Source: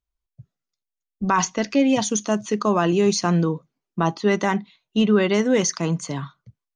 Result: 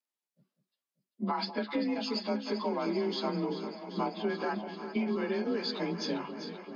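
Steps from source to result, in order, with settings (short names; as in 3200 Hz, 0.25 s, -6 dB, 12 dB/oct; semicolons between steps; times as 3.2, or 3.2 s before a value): inharmonic rescaling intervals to 91%; steep high-pass 200 Hz 48 dB/oct; compressor 6:1, threshold -30 dBFS, peak gain reduction 15 dB; echo with dull and thin repeats by turns 0.195 s, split 840 Hz, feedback 88%, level -10 dB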